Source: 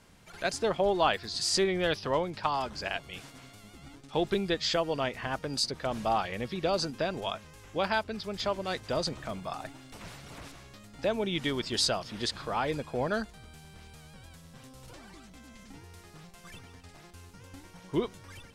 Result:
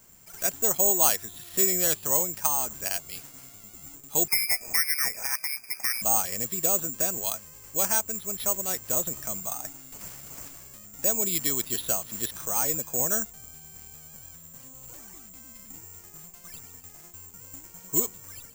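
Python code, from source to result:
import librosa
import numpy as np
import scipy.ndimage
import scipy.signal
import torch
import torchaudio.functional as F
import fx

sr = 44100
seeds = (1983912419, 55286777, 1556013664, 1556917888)

y = fx.freq_invert(x, sr, carrier_hz=2500, at=(4.28, 6.02))
y = (np.kron(scipy.signal.resample_poly(y, 1, 6), np.eye(6)[0]) * 6)[:len(y)]
y = F.gain(torch.from_numpy(y), -3.5).numpy()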